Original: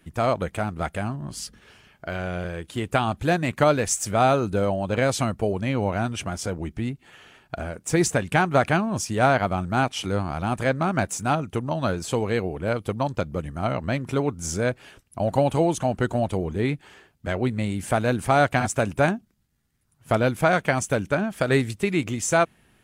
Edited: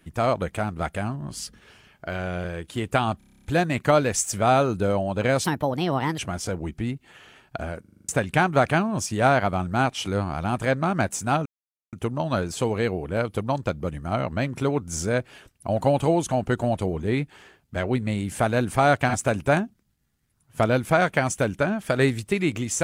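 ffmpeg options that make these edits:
-filter_complex "[0:a]asplit=20[a][b][c][d][e][f][g][h][i][j][k][l][m][n][o][p][q][r][s][t];[a]atrim=end=3.212[u];[b]atrim=start=3.178:end=3.212[v];[c]atrim=start=3.178:end=3.212[w];[d]atrim=start=3.178:end=3.212[x];[e]atrim=start=3.178:end=3.212[y];[f]atrim=start=3.178:end=3.212[z];[g]atrim=start=3.178:end=3.212[aa];[h]atrim=start=3.178:end=3.212[ab];[i]atrim=start=3.178:end=3.212[ac];[j]atrim=start=3.178:end=5.174[ad];[k]atrim=start=5.17:end=6.17,asetpts=PTS-STARTPTS,asetrate=59094,aresample=44100,atrim=end_sample=32910,asetpts=PTS-STARTPTS[ae];[l]atrim=start=6.166:end=7.832[af];[m]atrim=start=7.788:end=7.832[ag];[n]atrim=start=7.788:end=7.832[ah];[o]atrim=start=7.788:end=7.832[ai];[p]atrim=start=7.788:end=7.832[aj];[q]atrim=start=7.788:end=7.832[ak];[r]atrim=start=7.788:end=7.832[al];[s]atrim=start=8.068:end=11.44,asetpts=PTS-STARTPTS,afade=t=out:st=3.368:d=0.004:c=hsin,apad=pad_dur=0.47[am];[t]atrim=start=11.44,asetpts=PTS-STARTPTS,afade=t=in:d=0.004:c=hsin[an];[u][v]acrossfade=d=0.004:c1=hsin:c2=hsin[ao];[ao][w]acrossfade=d=0.004:c1=hsin:c2=hsin[ap];[ap][x]acrossfade=d=0.004:c1=hsin:c2=hsin[aq];[aq][y]acrossfade=d=0.004:c1=hsin:c2=hsin[ar];[ar][z]acrossfade=d=0.004:c1=hsin:c2=hsin[as];[as][aa]acrossfade=d=0.004:c1=hsin:c2=hsin[at];[at][ab]acrossfade=d=0.004:c1=hsin:c2=hsin[au];[au][ac]acrossfade=d=0.004:c1=hsin:c2=hsin[av];[av][ad]acrossfade=d=0.004:c1=hsin:c2=hsin[aw];[aw][ae]acrossfade=d=0.004:c1=hsin:c2=hsin[ax];[ax][af]acrossfade=d=0.004:c1=hsin:c2=hsin[ay];[ay][ag]acrossfade=d=0.004:c1=hsin:c2=hsin[az];[az][ah]acrossfade=d=0.004:c1=hsin:c2=hsin[ba];[ba][ai]acrossfade=d=0.004:c1=hsin:c2=hsin[bb];[bb][aj]acrossfade=d=0.004:c1=hsin:c2=hsin[bc];[bc][ak]acrossfade=d=0.004:c1=hsin:c2=hsin[bd];[bd][al]acrossfade=d=0.004:c1=hsin:c2=hsin[be];[am][an]concat=n=2:v=0:a=1[bf];[be][bf]acrossfade=d=0.004:c1=hsin:c2=hsin"

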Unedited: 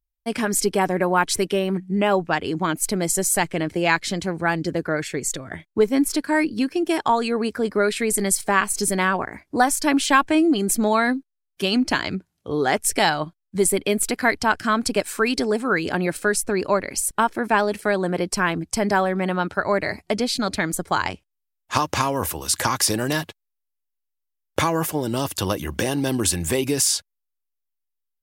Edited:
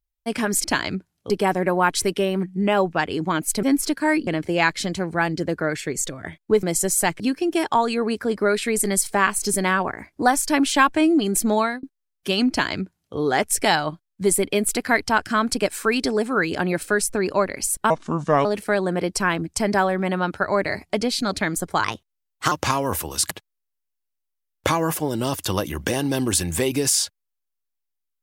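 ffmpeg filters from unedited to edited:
-filter_complex "[0:a]asplit=13[a][b][c][d][e][f][g][h][i][j][k][l][m];[a]atrim=end=0.642[n];[b]atrim=start=11.838:end=12.502[o];[c]atrim=start=0.638:end=2.972[p];[d]atrim=start=5.898:end=6.542[q];[e]atrim=start=3.538:end=5.902[r];[f]atrim=start=2.968:end=3.542[s];[g]atrim=start=6.538:end=11.17,asetpts=PTS-STARTPTS,afade=t=out:st=4.382:d=0.25[t];[h]atrim=start=11.17:end=17.244,asetpts=PTS-STARTPTS,afade=t=in:d=0.004:c=hsin[u];[i]atrim=start=17.24:end=17.62,asetpts=PTS-STARTPTS,asetrate=30429,aresample=44100[v];[j]atrim=start=17.616:end=21.014[w];[k]atrim=start=21.01:end=21.82,asetpts=PTS-STARTPTS,asetrate=52920,aresample=44100[x];[l]atrim=start=21.816:end=22.612[y];[m]atrim=start=23.228[z];[n][o]acrossfade=d=0.004:c1=hsin:c2=hsin[aa];[aa][p]acrossfade=d=0.004:c1=hsin:c2=hsin[ab];[ab][q]acrossfade=d=0.004:c1=hsin:c2=hsin[ac];[ac][r]acrossfade=d=0.004:c1=hsin:c2=hsin[ad];[ad][s]acrossfade=d=0.004:c1=hsin:c2=hsin[ae];[t][u]concat=n=2:v=0:a=1[af];[ae][af]acrossfade=d=0.004:c1=hsin:c2=hsin[ag];[ag][v]acrossfade=d=0.004:c1=hsin:c2=hsin[ah];[ah][w]acrossfade=d=0.004:c1=hsin:c2=hsin[ai];[ai][x]acrossfade=d=0.004:c1=hsin:c2=hsin[aj];[aj][y]acrossfade=d=0.004:c1=hsin:c2=hsin[ak];[ak][z]acrossfade=d=0.004:c1=hsin:c2=hsin"

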